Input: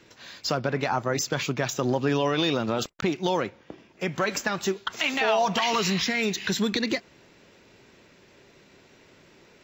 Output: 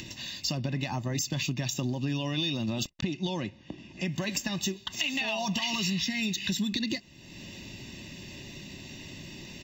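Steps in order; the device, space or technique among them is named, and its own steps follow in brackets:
flat-topped bell 1,100 Hz −13 dB
comb filter 1.1 ms, depth 92%
upward and downward compression (upward compression, threshold −32 dBFS; downward compressor 5 to 1, threshold −27 dBFS, peak gain reduction 7.5 dB)
0:02.89–0:04.05: high-frequency loss of the air 52 metres

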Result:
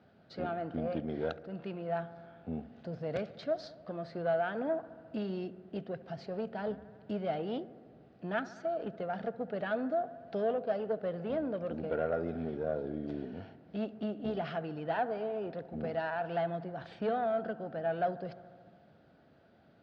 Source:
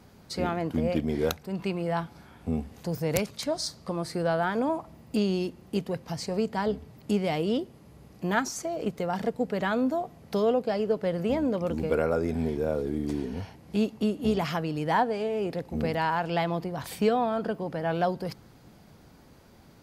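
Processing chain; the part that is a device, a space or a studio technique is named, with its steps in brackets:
analogue delay pedal into a guitar amplifier (bucket-brigade delay 71 ms, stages 1,024, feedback 78%, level −19 dB; tube saturation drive 19 dB, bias 0.55; loudspeaker in its box 110–3,700 Hz, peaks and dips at 660 Hz +9 dB, 1,000 Hz −9 dB, 1,500 Hz +6 dB, 2,200 Hz −5 dB)
level −6 dB

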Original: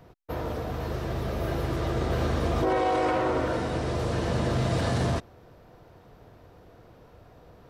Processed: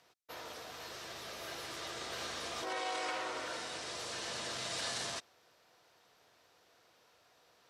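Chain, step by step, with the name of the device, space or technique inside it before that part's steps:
piezo pickup straight into a mixer (low-pass filter 7,200 Hz 12 dB per octave; first difference)
level +6 dB

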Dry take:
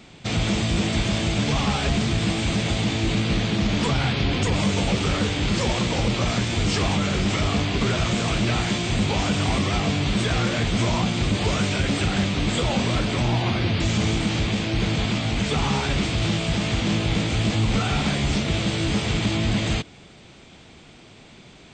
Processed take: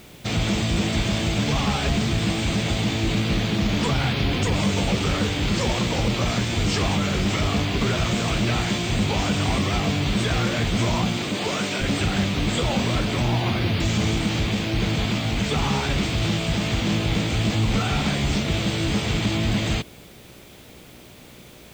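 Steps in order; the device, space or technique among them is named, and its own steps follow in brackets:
video cassette with head-switching buzz (hum with harmonics 60 Hz, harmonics 10, −52 dBFS −1 dB per octave; white noise bed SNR 31 dB)
0:11.17–0:11.82: high-pass filter 210 Hz 12 dB per octave

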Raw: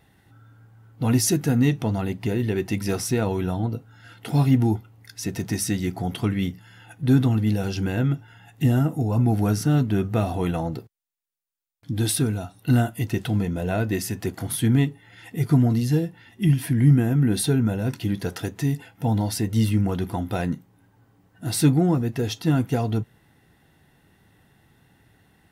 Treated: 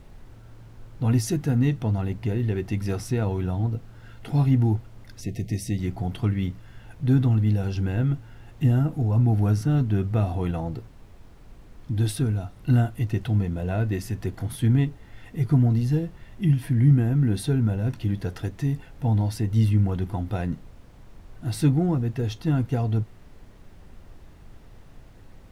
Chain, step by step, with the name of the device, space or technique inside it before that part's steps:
car interior (parametric band 100 Hz +7.5 dB 0.95 octaves; high-shelf EQ 4,600 Hz −8 dB; brown noise bed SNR 20 dB)
0:05.21–0:05.79: Chebyshev band-stop filter 680–2,000 Hz, order 3
level −4.5 dB

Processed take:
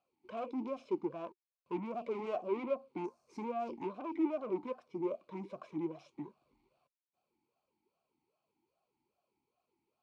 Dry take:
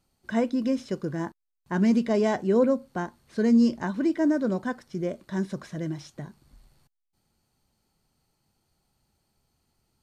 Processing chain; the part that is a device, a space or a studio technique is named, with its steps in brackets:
0:03.04–0:03.44: high shelf with overshoot 4,400 Hz +10 dB, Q 3
talk box (tube saturation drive 31 dB, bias 0.55; formant filter swept between two vowels a-u 2.5 Hz)
level +7.5 dB

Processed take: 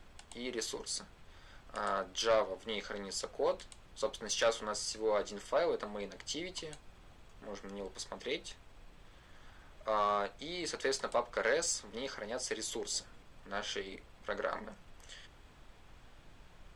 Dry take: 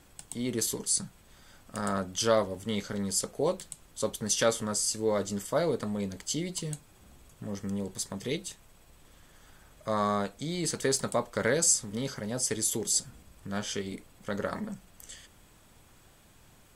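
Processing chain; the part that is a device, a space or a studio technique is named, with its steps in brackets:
aircraft cabin announcement (band-pass filter 490–4,100 Hz; soft clipping −21.5 dBFS, distortion −16 dB; brown noise bed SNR 17 dB)

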